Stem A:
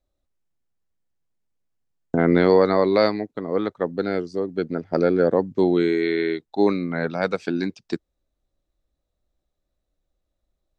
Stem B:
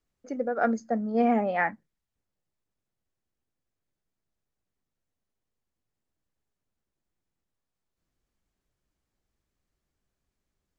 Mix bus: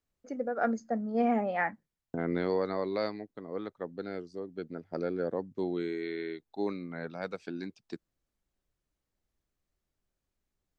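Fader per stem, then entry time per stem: -14.0, -4.0 dB; 0.00, 0.00 s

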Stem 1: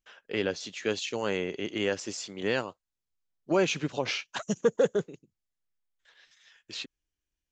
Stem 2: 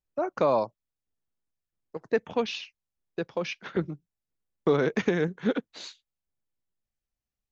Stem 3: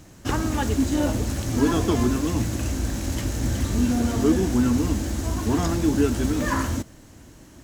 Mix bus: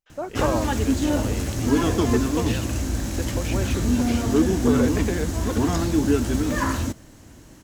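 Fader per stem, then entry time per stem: -6.5, -2.0, +0.5 dB; 0.00, 0.00, 0.10 s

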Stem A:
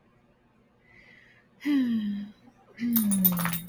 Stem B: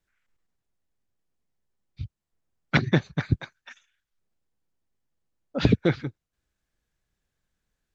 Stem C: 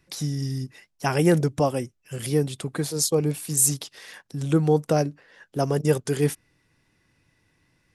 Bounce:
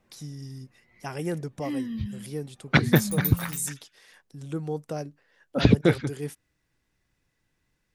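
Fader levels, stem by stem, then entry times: -6.0, +2.0, -11.5 dB; 0.00, 0.00, 0.00 s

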